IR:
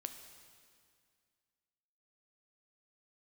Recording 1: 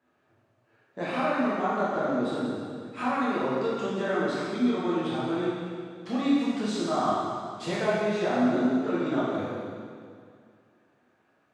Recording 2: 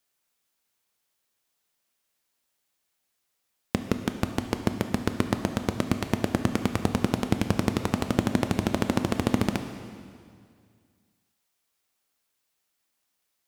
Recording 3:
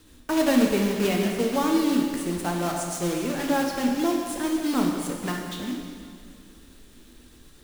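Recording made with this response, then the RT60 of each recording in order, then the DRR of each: 2; 2.1, 2.1, 2.1 s; -8.5, 7.0, 0.5 dB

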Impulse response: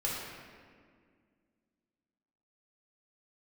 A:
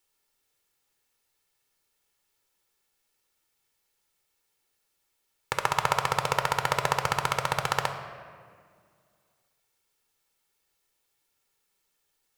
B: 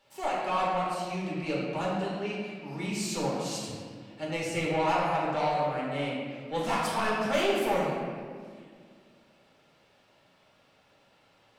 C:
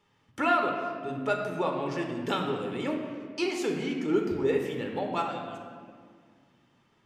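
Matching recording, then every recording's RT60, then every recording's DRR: B; 2.0, 2.0, 2.0 s; 7.0, -5.5, 1.5 dB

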